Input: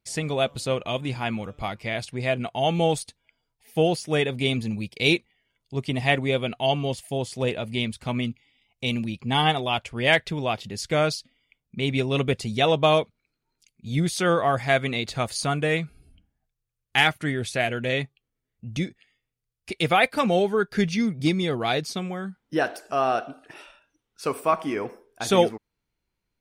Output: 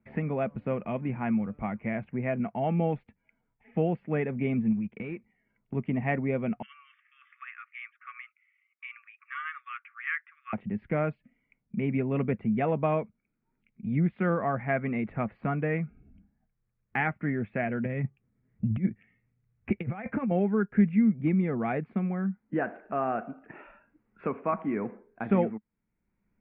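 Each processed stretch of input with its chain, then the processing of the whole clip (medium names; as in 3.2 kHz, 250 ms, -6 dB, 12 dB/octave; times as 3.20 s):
4.72–5.75 s: waveshaping leveller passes 1 + compression 10:1, threshold -30 dBFS
6.62–10.53 s: brick-wall FIR band-pass 1.1–3.7 kHz + treble shelf 2.6 kHz -8.5 dB
17.85–20.31 s: peaking EQ 100 Hz +12 dB 1.5 oct + compressor with a negative ratio -25 dBFS, ratio -0.5
whole clip: steep low-pass 2.3 kHz 48 dB/octave; peaking EQ 210 Hz +13.5 dB 0.59 oct; three bands compressed up and down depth 40%; trim -7 dB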